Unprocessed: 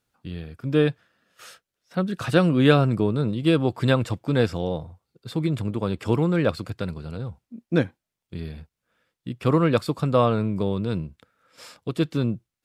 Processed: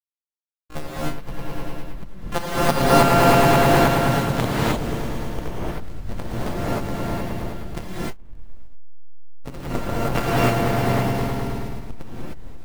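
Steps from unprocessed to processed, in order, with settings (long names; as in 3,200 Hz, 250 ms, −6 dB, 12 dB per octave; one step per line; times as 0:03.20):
samples sorted by size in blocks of 64 samples
tuned comb filter 91 Hz, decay 0.2 s, harmonics all, mix 30%
on a send: echo that builds up and dies away 106 ms, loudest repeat 5, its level −5 dB
on the sum: power curve on the samples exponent 2
slack as between gear wheels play −22 dBFS
transient designer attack +8 dB, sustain 0 dB
reverb whose tail is shaped and stops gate 330 ms rising, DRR −8 dB
pitch-shifted copies added +12 semitones −10 dB
level −3.5 dB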